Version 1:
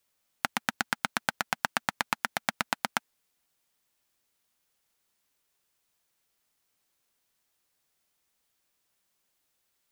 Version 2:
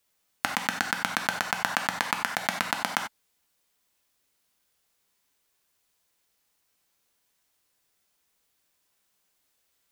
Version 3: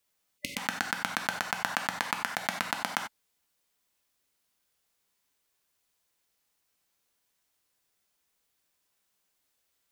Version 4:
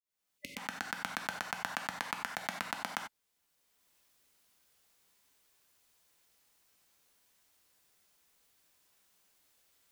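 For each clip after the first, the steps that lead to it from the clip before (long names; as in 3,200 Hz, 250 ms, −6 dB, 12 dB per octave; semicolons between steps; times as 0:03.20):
reverb whose tail is shaped and stops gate 110 ms flat, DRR 3.5 dB; level +1.5 dB
time-frequency box erased 0:00.38–0:00.58, 600–2,000 Hz; level −3.5 dB
fade in at the beginning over 1.07 s; multiband upward and downward compressor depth 40%; level −6 dB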